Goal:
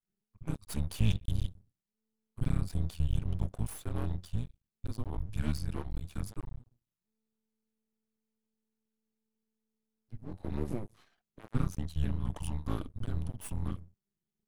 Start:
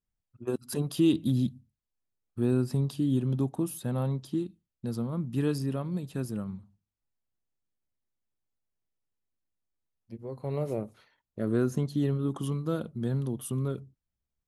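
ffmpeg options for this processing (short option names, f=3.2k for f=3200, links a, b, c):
-af "afreqshift=-220,aeval=exprs='max(val(0),0)':c=same"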